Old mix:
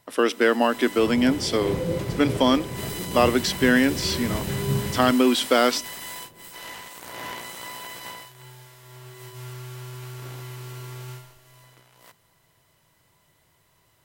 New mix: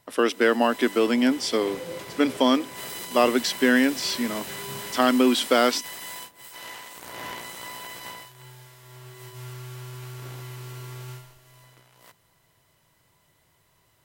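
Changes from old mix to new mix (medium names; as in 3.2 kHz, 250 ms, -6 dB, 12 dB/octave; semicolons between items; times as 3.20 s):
second sound: add high-pass 1 kHz 6 dB/octave; reverb: off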